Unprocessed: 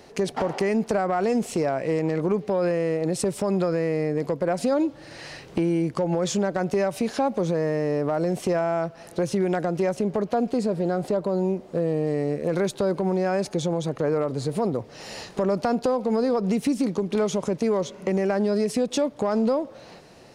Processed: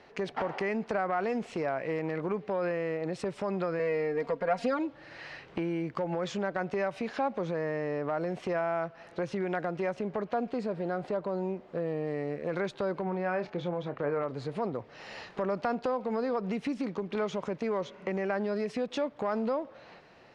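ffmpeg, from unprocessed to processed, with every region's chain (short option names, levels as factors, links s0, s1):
-filter_complex "[0:a]asettb=1/sr,asplit=3[s0][s1][s2];[s0]atrim=end=3.794[s3];[s1]atrim=start=3.79:end=4.79,asetpts=PTS-STARTPTS,afade=t=in:d=0.004:c=qsin,afade=t=out:st=0.996:d=0.004:c=qsin,equalizer=f=190:w=0.82:g=-4,aecho=1:1:4.3:1,atrim=end_sample=44100[s4];[s2]atrim=start=4.786[s5];[s3][s4]acrossfade=d=0.004:c1=hsin:c2=qsin[s6];[s6][s5]acrossfade=d=0.004:c1=qsin:c2=hsin,asettb=1/sr,asplit=3[s7][s8][s9];[s7]atrim=end=13.044[s10];[s8]atrim=start=13.04:end=14.23,asetpts=PTS-STARTPTS,afade=t=in:d=0.004:c=qsin,afade=t=out:st=1.186:d=0.004:c=qsin,lowpass=3400,asplit=2[s11][s12];[s12]adelay=28,volume=0.299[s13];[s11][s13]amix=inputs=2:normalize=0,atrim=end_sample=52479[s14];[s9]atrim=start=14.226[s15];[s10][s14]acrossfade=d=0.004:c1=hsin:c2=qsin[s16];[s16][s15]acrossfade=d=0.004:c1=qsin:c2=hsin,lowpass=1800,tiltshelf=f=1200:g=-8.5,volume=0.794"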